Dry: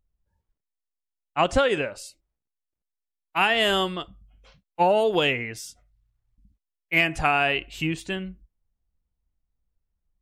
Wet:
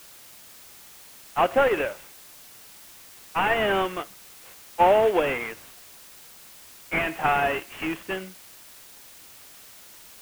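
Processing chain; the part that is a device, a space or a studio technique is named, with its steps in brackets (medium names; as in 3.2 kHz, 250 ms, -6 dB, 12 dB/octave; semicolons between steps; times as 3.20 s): army field radio (band-pass 350–3300 Hz; CVSD coder 16 kbps; white noise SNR 20 dB); trim +3.5 dB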